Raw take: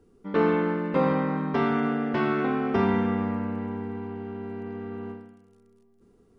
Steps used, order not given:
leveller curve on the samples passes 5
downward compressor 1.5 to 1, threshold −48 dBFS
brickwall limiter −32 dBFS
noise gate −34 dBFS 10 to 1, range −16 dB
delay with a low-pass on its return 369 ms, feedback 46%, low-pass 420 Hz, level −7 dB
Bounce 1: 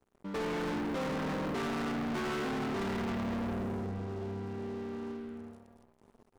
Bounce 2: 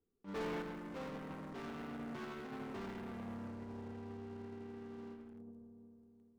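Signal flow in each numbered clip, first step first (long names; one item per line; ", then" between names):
downward compressor, then noise gate, then delay with a low-pass on its return, then brickwall limiter, then leveller curve on the samples
leveller curve on the samples, then downward compressor, then delay with a low-pass on its return, then brickwall limiter, then noise gate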